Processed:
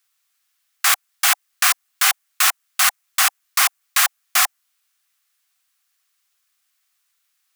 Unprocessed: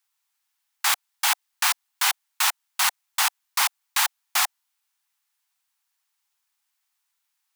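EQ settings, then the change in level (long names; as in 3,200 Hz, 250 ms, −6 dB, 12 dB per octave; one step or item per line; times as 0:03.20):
dynamic equaliser 3,800 Hz, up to −4 dB, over −38 dBFS, Q 1.3
high-pass filter 510 Hz
Butterworth band-reject 910 Hz, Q 3.8
+7.0 dB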